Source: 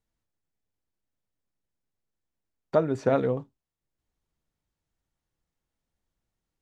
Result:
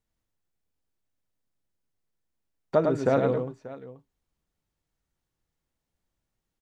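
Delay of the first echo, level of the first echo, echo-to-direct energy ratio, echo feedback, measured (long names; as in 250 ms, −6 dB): 104 ms, −4.5 dB, −4.5 dB, repeats not evenly spaced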